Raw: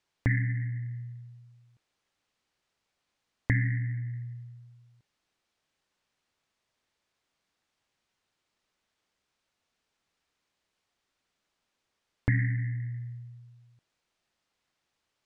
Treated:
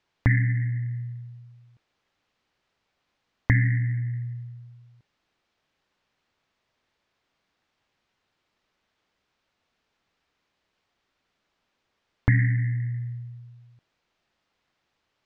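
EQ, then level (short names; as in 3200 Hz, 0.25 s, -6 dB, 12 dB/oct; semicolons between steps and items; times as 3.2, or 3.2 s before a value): dynamic EQ 510 Hz, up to -7 dB, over -49 dBFS, Q 0.96; air absorption 110 m; +6.5 dB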